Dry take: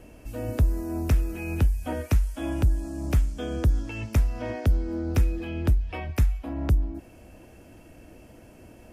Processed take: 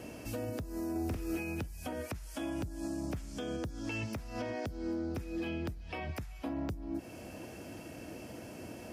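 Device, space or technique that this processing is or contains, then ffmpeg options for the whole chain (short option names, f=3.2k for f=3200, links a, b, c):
broadcast voice chain: -filter_complex "[0:a]highpass=110,deesser=0.95,acompressor=threshold=-36dB:ratio=4,equalizer=f=5k:t=o:w=0.84:g=5,alimiter=level_in=9dB:limit=-24dB:level=0:latency=1:release=251,volume=-9dB,asettb=1/sr,asplit=3[a][b][c];[a]atrim=end=0.914[d];[b]atrim=start=0.91:end=1.38,asetpts=PTS-STARTPTS,afade=t=in:d=0.004:c=qsin,afade=t=out:st=0.466:d=0.004:c=qsin,asplit=2[e][f];[f]adelay=46,volume=-4dB[g];[e][g]amix=inputs=2:normalize=0,atrim=end_sample=20727[h];[c]atrim=start=1.376[i];[d][h]acrossfade=d=0.004:c1=hsin:c2=qsin[j];[j][i]acrossfade=d=0.004:c1=qsin:c2=hsin,volume=4.5dB"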